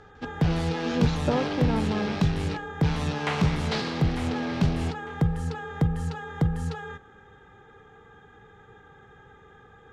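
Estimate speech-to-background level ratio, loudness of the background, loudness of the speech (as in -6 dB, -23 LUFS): -3.0 dB, -27.5 LUFS, -30.5 LUFS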